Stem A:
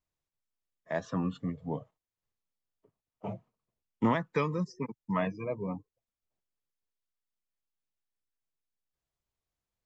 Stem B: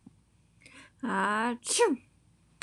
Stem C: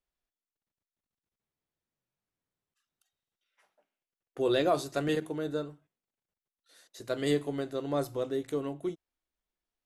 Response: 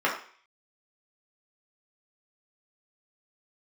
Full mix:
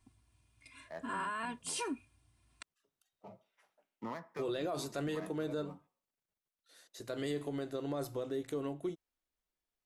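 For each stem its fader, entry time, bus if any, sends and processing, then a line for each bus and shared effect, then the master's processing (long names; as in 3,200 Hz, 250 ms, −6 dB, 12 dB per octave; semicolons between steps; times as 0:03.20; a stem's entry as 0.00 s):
−13.0 dB, 0.00 s, send −24 dB, running median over 15 samples; high-pass filter 280 Hz 6 dB per octave
−6.5 dB, 0.00 s, no send, parametric band 370 Hz −8.5 dB 1.2 octaves; comb filter 2.9 ms, depth 94%
−2.0 dB, 0.00 s, no send, no processing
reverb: on, RT60 0.45 s, pre-delay 3 ms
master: brickwall limiter −29 dBFS, peak gain reduction 11.5 dB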